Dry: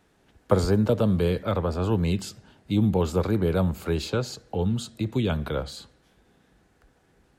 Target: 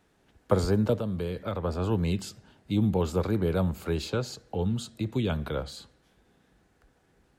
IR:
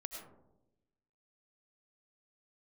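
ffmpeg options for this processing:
-filter_complex "[0:a]asplit=3[a][b][c];[a]afade=t=out:st=0.97:d=0.02[d];[b]acompressor=threshold=-25dB:ratio=4,afade=t=in:st=0.97:d=0.02,afade=t=out:st=1.63:d=0.02[e];[c]afade=t=in:st=1.63:d=0.02[f];[d][e][f]amix=inputs=3:normalize=0,volume=-3dB"

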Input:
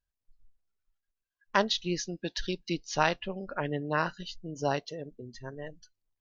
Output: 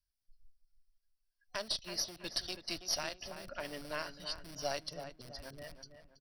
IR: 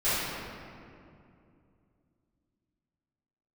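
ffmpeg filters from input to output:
-filter_complex "[0:a]acrossover=split=210|780[a][b][c];[a]aeval=exprs='(mod(150*val(0)+1,2)-1)/150':c=same[d];[d][b][c]amix=inputs=3:normalize=0,equalizer=f=550:t=o:w=2.8:g=-14.5,alimiter=level_in=3dB:limit=-24dB:level=0:latency=1:release=483,volume=-3dB,aeval=exprs='(tanh(35.5*val(0)+0.8)-tanh(0.8))/35.5':c=same,superequalizer=8b=2.82:14b=2.51:15b=0.251:16b=1.58,asplit=2[e][f];[f]adelay=327,lowpass=f=2.4k:p=1,volume=-9dB,asplit=2[g][h];[h]adelay=327,lowpass=f=2.4k:p=1,volume=0.38,asplit=2[i][j];[j]adelay=327,lowpass=f=2.4k:p=1,volume=0.38,asplit=2[k][l];[l]adelay=327,lowpass=f=2.4k:p=1,volume=0.38[m];[g][i][k][m]amix=inputs=4:normalize=0[n];[e][n]amix=inputs=2:normalize=0,volume=4.5dB"

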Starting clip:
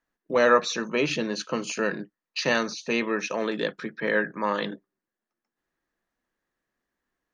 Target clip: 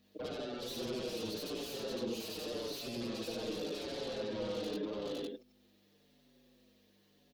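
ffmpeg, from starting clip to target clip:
-filter_complex "[0:a]afftfilt=real='re':imag='-im':win_size=8192:overlap=0.75,acrossover=split=380[a][b];[b]acompressor=threshold=-43dB:ratio=8[c];[a][c]amix=inputs=2:normalize=0,asplit=2[d][e];[e]aecho=0:1:508:0.355[f];[d][f]amix=inputs=2:normalize=0,acompressor=threshold=-44dB:ratio=3,aeval=exprs='val(0)+0.000316*(sin(2*PI*50*n/s)+sin(2*PI*2*50*n/s)/2+sin(2*PI*3*50*n/s)/3+sin(2*PI*4*50*n/s)/4+sin(2*PI*5*50*n/s)/5)':c=same,aexciter=amount=10.9:drive=3.2:freq=2.2k,acrossover=split=270 2500:gain=0.0708 1 0.158[g][h][i];[g][h][i]amix=inputs=3:normalize=0,alimiter=level_in=16dB:limit=-24dB:level=0:latency=1:release=17,volume=-16dB,aeval=exprs='0.01*sin(PI/2*3.16*val(0)/0.01)':c=same,equalizer=f=125:t=o:w=1:g=3,equalizer=f=250:t=o:w=1:g=6,equalizer=f=500:t=o:w=1:g=10,equalizer=f=1k:t=o:w=1:g=-4,equalizer=f=2k:t=o:w=1:g=-10,equalizer=f=4k:t=o:w=1:g=7,equalizer=f=8k:t=o:w=1:g=-8,asplit=2[j][k];[k]adelay=5.8,afreqshift=-0.88[l];[j][l]amix=inputs=2:normalize=1,volume=2dB"

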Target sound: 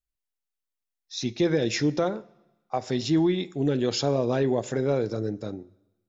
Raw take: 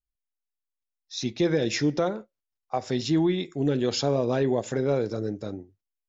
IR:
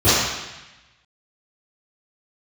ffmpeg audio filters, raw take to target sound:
-filter_complex "[0:a]asplit=2[a][b];[1:a]atrim=start_sample=2205[c];[b][c]afir=irnorm=-1:irlink=0,volume=-47dB[d];[a][d]amix=inputs=2:normalize=0"

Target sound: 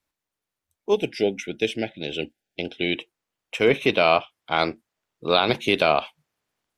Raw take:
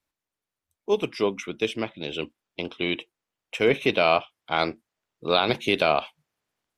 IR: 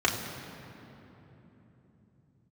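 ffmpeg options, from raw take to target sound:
-filter_complex "[0:a]asettb=1/sr,asplit=3[a][b][c];[a]atrim=end=0.964[d];[b]atrim=start=0.96:end=2.97,asetpts=PTS-STARTPTS,afade=t=in:d=0.004:c=qsin,afade=t=out:st=2.006:d=0.004:c=qsin,asuperstop=centerf=1100:order=12:qfactor=1.9[e];[c]atrim=start=2.966[f];[d][e]acrossfade=d=0.004:c1=hsin:c2=qsin[g];[g][f]acrossfade=d=0.004:c1=qsin:c2=hsin,volume=2dB"

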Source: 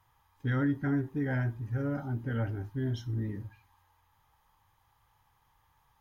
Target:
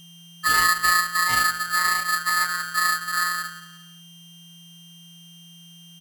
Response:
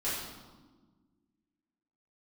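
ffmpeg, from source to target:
-filter_complex "[0:a]afwtdn=0.0126,asplit=2[a][b];[b]asetrate=35002,aresample=44100,atempo=1.25992,volume=-3dB[c];[a][c]amix=inputs=2:normalize=0,equalizer=f=98:w=0.57:g=8.5,aecho=1:1:175|350|525:0.168|0.0604|0.0218,afftfilt=real='hypot(re,im)*cos(PI*b)':imag='0':win_size=1024:overlap=0.75,aeval=exprs='val(0)+0.00282*sin(2*PI*1600*n/s)':c=same,afreqshift=69,aresample=32000,aresample=44100,lowshelf=f=67:g=11.5,aeval=exprs='val(0)*sgn(sin(2*PI*1500*n/s))':c=same,volume=7dB"

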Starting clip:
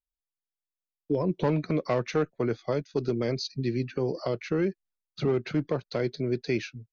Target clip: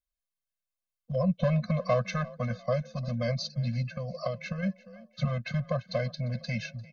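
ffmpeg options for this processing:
-filter_complex "[0:a]asplit=4[a][b][c][d];[b]adelay=348,afreqshift=31,volume=-21dB[e];[c]adelay=696,afreqshift=62,volume=-29.2dB[f];[d]adelay=1044,afreqshift=93,volume=-37.4dB[g];[a][e][f][g]amix=inputs=4:normalize=0,asettb=1/sr,asplit=3[h][i][j];[h]atrim=end=3.924[k];[i]atrim=start=3.92:end=4.63,asetpts=PTS-STARTPTS,afade=t=in:d=0.004:c=qsin,afade=t=out:st=0.706:d=0.004:c=qsin,acompressor=threshold=-28dB:ratio=6[l];[j]atrim=start=4.626[m];[k][l]acrossfade=d=0.004:c1=hsin:c2=qsin[n];[n][m]acrossfade=d=0.004:c1=qsin:c2=hsin,afftfilt=real='re*eq(mod(floor(b*sr/1024/250),2),0)':imag='im*eq(mod(floor(b*sr/1024/250),2),0)':win_size=1024:overlap=0.75,volume=3dB"

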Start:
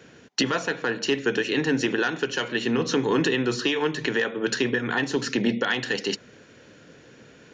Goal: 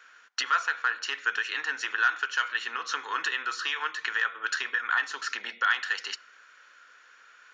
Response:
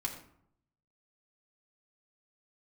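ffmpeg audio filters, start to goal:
-filter_complex "[0:a]highpass=f=1.3k:t=q:w=3.9,asplit=2[a][b];[1:a]atrim=start_sample=2205[c];[b][c]afir=irnorm=-1:irlink=0,volume=-19dB[d];[a][d]amix=inputs=2:normalize=0,volume=-6.5dB"

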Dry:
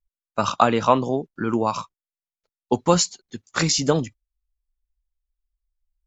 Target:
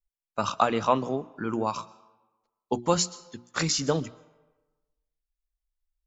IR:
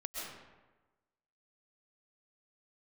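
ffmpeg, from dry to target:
-filter_complex "[0:a]bandreject=f=60:t=h:w=6,bandreject=f=120:t=h:w=6,bandreject=f=180:t=h:w=6,bandreject=f=240:t=h:w=6,bandreject=f=300:t=h:w=6,bandreject=f=360:t=h:w=6,asplit=2[a][b];[1:a]atrim=start_sample=2205,lowshelf=f=490:g=-11.5[c];[b][c]afir=irnorm=-1:irlink=0,volume=-17.5dB[d];[a][d]amix=inputs=2:normalize=0,volume=-6dB"

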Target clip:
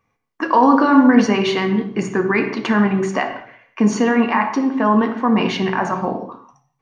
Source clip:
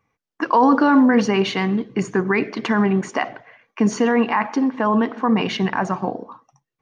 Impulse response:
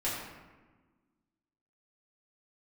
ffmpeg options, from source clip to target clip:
-filter_complex "[0:a]asplit=2[a][b];[1:a]atrim=start_sample=2205,afade=t=out:st=0.31:d=0.01,atrim=end_sample=14112,asetrate=52920,aresample=44100[c];[b][c]afir=irnorm=-1:irlink=0,volume=-7dB[d];[a][d]amix=inputs=2:normalize=0,volume=-1dB"

